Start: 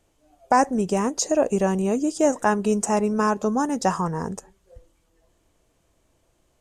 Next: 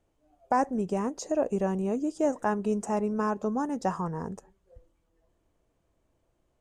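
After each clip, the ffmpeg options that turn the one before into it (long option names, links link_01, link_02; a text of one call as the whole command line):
ffmpeg -i in.wav -af "highshelf=frequency=2300:gain=-10,volume=-6dB" out.wav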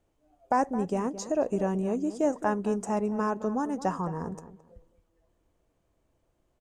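ffmpeg -i in.wav -filter_complex "[0:a]asplit=2[link_01][link_02];[link_02]adelay=217,lowpass=frequency=1700:poles=1,volume=-13dB,asplit=2[link_03][link_04];[link_04]adelay=217,lowpass=frequency=1700:poles=1,volume=0.23,asplit=2[link_05][link_06];[link_06]adelay=217,lowpass=frequency=1700:poles=1,volume=0.23[link_07];[link_01][link_03][link_05][link_07]amix=inputs=4:normalize=0" out.wav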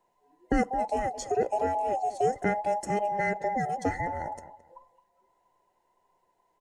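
ffmpeg -i in.wav -af "afftfilt=real='real(if(between(b,1,1008),(2*floor((b-1)/48)+1)*48-b,b),0)':imag='imag(if(between(b,1,1008),(2*floor((b-1)/48)+1)*48-b,b),0)*if(between(b,1,1008),-1,1)':win_size=2048:overlap=0.75" out.wav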